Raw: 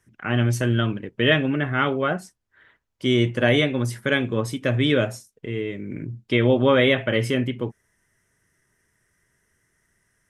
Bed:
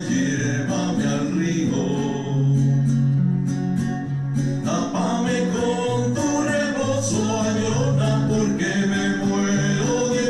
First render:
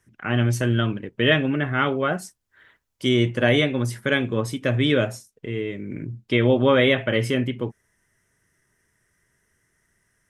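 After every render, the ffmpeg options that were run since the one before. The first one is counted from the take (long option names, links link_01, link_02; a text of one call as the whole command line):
ffmpeg -i in.wav -filter_complex "[0:a]asettb=1/sr,asplit=3[link_01][link_02][link_03];[link_01]atrim=end=2.134[link_04];[link_02]atrim=start=2.13:end=3.09,asetpts=PTS-STARTPTS,afade=type=in:duration=0.004:curve=qsin,afade=type=out:start_time=0.956:duration=0.004:curve=qsin,highshelf=frequency=4600:gain=8.5[link_05];[link_03]atrim=start=3.086[link_06];[link_04][link_05]acrossfade=duration=0.004:curve1=hsin:curve2=qsin[link_07];[link_07][link_06]acrossfade=duration=0.004:curve1=qsin:curve2=hsin" out.wav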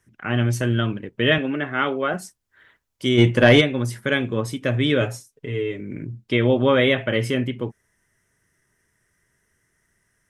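ffmpeg -i in.wav -filter_complex "[0:a]asettb=1/sr,asplit=3[link_01][link_02][link_03];[link_01]atrim=end=1.384[link_04];[link_02]atrim=start=1.38:end=2.14,asetpts=PTS-STARTPTS,afade=type=in:duration=0.004:curve=qsin,afade=type=out:start_time=0.756:duration=0.004:curve=qsin,highpass=220,lowpass=7600[link_05];[link_03]atrim=start=2.136[link_06];[link_04][link_05]acrossfade=duration=0.004:curve1=hsin:curve2=qsin[link_07];[link_07][link_06]acrossfade=duration=0.004:curve1=qsin:curve2=hsin,asplit=3[link_08][link_09][link_10];[link_08]afade=type=out:start_time=3.17:duration=0.02[link_11];[link_09]acontrast=75,afade=type=in:start_time=3.17:duration=0.02,afade=type=out:start_time=3.6:duration=0.02[link_12];[link_10]afade=type=in:start_time=3.6:duration=0.02[link_13];[link_11][link_12][link_13]amix=inputs=3:normalize=0,asettb=1/sr,asplit=3[link_14][link_15][link_16];[link_14]atrim=end=5.004[link_17];[link_15]atrim=start=5:end=5.81,asetpts=PTS-STARTPTS,afade=type=in:duration=0.004:curve=qsin,afade=type=out:start_time=0.806:duration=0.004:curve=qsin,aecho=1:1:7.1:0.65,atrim=end_sample=35721[link_18];[link_16]atrim=start=5.806[link_19];[link_17][link_18]acrossfade=duration=0.004:curve1=hsin:curve2=qsin[link_20];[link_20][link_19]acrossfade=duration=0.004:curve1=qsin:curve2=hsin" out.wav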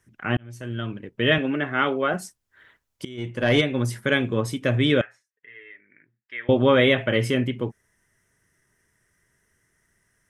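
ffmpeg -i in.wav -filter_complex "[0:a]asettb=1/sr,asplit=3[link_01][link_02][link_03];[link_01]atrim=end=5.014[link_04];[link_02]atrim=start=5.01:end=6.49,asetpts=PTS-STARTPTS,afade=type=in:duration=0.004:curve=qsin,afade=type=out:start_time=1.476:duration=0.004:curve=qsin,bandpass=frequency=1800:width_type=q:width=6.2[link_05];[link_03]atrim=start=6.486[link_06];[link_04][link_05]acrossfade=duration=0.004:curve1=hsin:curve2=qsin[link_07];[link_07][link_06]acrossfade=duration=0.004:curve1=qsin:curve2=hsin,asplit=3[link_08][link_09][link_10];[link_08]atrim=end=0.37,asetpts=PTS-STARTPTS,afade=type=out:start_time=0.366:duration=0.004:curve=hsin[link_11];[link_09]atrim=start=0.37:end=3.05,asetpts=PTS-STARTPTS,afade=type=in:duration=1.11,afade=type=out:start_time=2.676:duration=0.004:curve=hsin:silence=0.0944061[link_12];[link_10]atrim=start=3.05,asetpts=PTS-STARTPTS,afade=type=in:duration=0.73:curve=qua:silence=0.0944061[link_13];[link_11][link_12][link_13]concat=n=3:v=0:a=1" out.wav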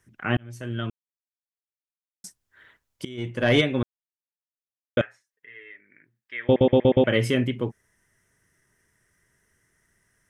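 ffmpeg -i in.wav -filter_complex "[0:a]asplit=10[link_01][link_02][link_03][link_04][link_05][link_06][link_07][link_08][link_09][link_10];[link_01]atrim=end=0.9,asetpts=PTS-STARTPTS,afade=type=out:start_time=0.896:duration=0.004:curve=hsin[link_11];[link_02]atrim=start=0.9:end=2.24,asetpts=PTS-STARTPTS,volume=0[link_12];[link_03]atrim=start=2.24:end=3.83,asetpts=PTS-STARTPTS,afade=type=in:duration=0.004:curve=hsin,afade=type=out:start_time=1.586:duration=0.004:curve=hsin[link_13];[link_04]atrim=start=3.83:end=4.97,asetpts=PTS-STARTPTS,volume=0[link_14];[link_05]atrim=start=4.97:end=6.562,asetpts=PTS-STARTPTS,afade=type=in:duration=0.004:curve=hsin[link_15];[link_06]atrim=start=6.438:end=6.562[link_16];[link_07]atrim=start=6.438:end=6.562[link_17];[link_08]atrim=start=6.438:end=6.562[link_18];[link_09]atrim=start=6.438:end=6.562[link_19];[link_10]atrim=start=7.038[link_20];[link_11][link_12][link_13][link_14][link_15]concat=n=5:v=0:a=1[link_21];[link_21][link_16]acrossfade=duration=0.004:curve1=hsin:curve2=hsin[link_22];[link_22][link_17]acrossfade=duration=0.004:curve1=hsin:curve2=hsin[link_23];[link_23][link_18]acrossfade=duration=0.004:curve1=hsin:curve2=hsin[link_24];[link_24][link_19]acrossfade=duration=0.004:curve1=hsin:curve2=hsin[link_25];[link_25][link_20]acrossfade=duration=0.004:curve1=hsin:curve2=hsin" out.wav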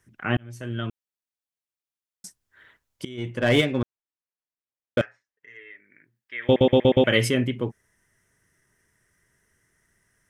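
ffmpeg -i in.wav -filter_complex "[0:a]asettb=1/sr,asplit=3[link_01][link_02][link_03];[link_01]atrim=end=3.394[link_04];[link_02]atrim=start=3.39:end=5.57,asetpts=PTS-STARTPTS,afade=type=in:duration=0.004:curve=qsin,afade=type=out:start_time=2.176:duration=0.004:curve=qsin,adynamicsmooth=sensitivity=5:basefreq=3700[link_05];[link_03]atrim=start=5.566[link_06];[link_04][link_05]acrossfade=duration=0.004:curve1=hsin:curve2=qsin[link_07];[link_07][link_06]acrossfade=duration=0.004:curve1=qsin:curve2=hsin,asettb=1/sr,asplit=3[link_08][link_09][link_10];[link_08]atrim=end=6.424[link_11];[link_09]atrim=start=6.42:end=7.29,asetpts=PTS-STARTPTS,afade=type=in:duration=0.004:curve=qsin,afade=type=out:start_time=0.866:duration=0.004:curve=qsin,highshelf=frequency=2000:gain=8.5[link_12];[link_10]atrim=start=7.286[link_13];[link_11][link_12]acrossfade=duration=0.004:curve1=hsin:curve2=qsin[link_14];[link_14][link_13]acrossfade=duration=0.004:curve1=qsin:curve2=hsin" out.wav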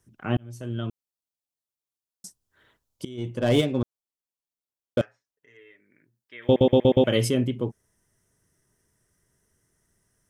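ffmpeg -i in.wav -af "equalizer=frequency=1900:width_type=o:width=1.1:gain=-11.5" out.wav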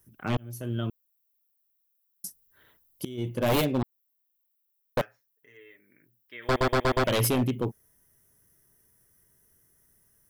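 ffmpeg -i in.wav -af "aexciter=amount=7.2:drive=6.8:freq=11000,aeval=exprs='0.126*(abs(mod(val(0)/0.126+3,4)-2)-1)':channel_layout=same" out.wav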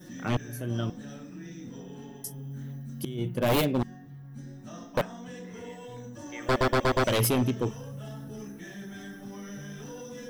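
ffmpeg -i in.wav -i bed.wav -filter_complex "[1:a]volume=-21dB[link_01];[0:a][link_01]amix=inputs=2:normalize=0" out.wav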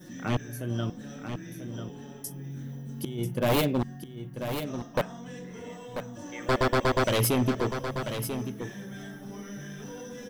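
ffmpeg -i in.wav -af "aecho=1:1:990:0.376" out.wav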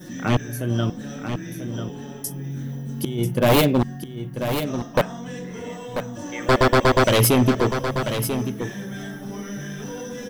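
ffmpeg -i in.wav -af "volume=8dB" out.wav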